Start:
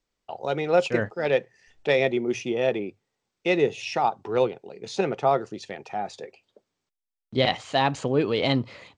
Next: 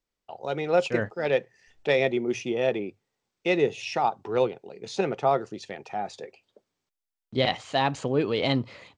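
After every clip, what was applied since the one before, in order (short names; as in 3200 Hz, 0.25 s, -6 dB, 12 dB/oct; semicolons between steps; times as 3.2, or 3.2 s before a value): AGC gain up to 4.5 dB; gain -5.5 dB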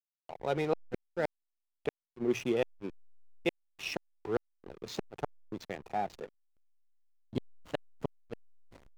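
flipped gate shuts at -16 dBFS, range -37 dB; backlash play -35 dBFS; gain -1.5 dB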